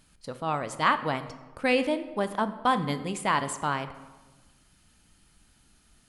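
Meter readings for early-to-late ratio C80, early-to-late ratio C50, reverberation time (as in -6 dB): 14.5 dB, 13.0 dB, 1.3 s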